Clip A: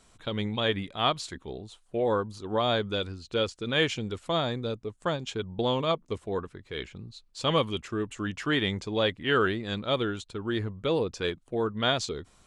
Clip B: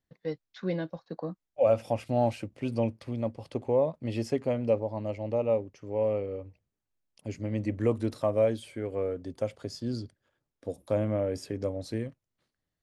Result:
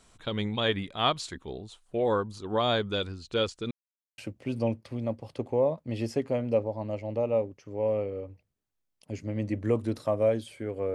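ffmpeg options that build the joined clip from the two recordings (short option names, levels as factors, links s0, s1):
-filter_complex "[0:a]apad=whole_dur=10.94,atrim=end=10.94,asplit=2[s0][s1];[s0]atrim=end=3.71,asetpts=PTS-STARTPTS,afade=t=out:st=3.706:d=0.004:c=hsin[s2];[s1]atrim=start=3.71:end=4.18,asetpts=PTS-STARTPTS,volume=0[s3];[1:a]atrim=start=2.34:end=9.1,asetpts=PTS-STARTPTS,afade=t=in:d=0.004:c=hsin[s4];[s2][s3][s4]concat=n=3:v=0:a=1"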